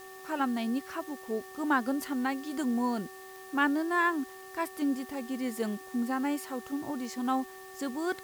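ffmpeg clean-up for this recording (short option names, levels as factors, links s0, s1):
-af "adeclick=t=4,bandreject=f=380.7:t=h:w=4,bandreject=f=761.4:t=h:w=4,bandreject=f=1142.1:t=h:w=4,bandreject=f=1800:w=30,afwtdn=0.002"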